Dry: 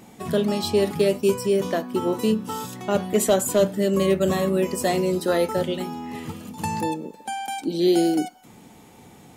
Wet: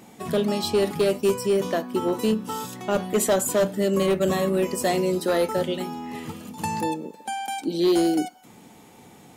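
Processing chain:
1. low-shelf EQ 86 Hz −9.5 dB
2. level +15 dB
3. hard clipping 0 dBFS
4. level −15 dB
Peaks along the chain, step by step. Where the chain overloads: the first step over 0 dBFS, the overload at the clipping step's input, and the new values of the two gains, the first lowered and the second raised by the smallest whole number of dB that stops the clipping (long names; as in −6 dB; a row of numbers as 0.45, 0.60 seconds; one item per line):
−8.5, +6.5, 0.0, −15.0 dBFS
step 2, 6.5 dB
step 2 +8 dB, step 4 −8 dB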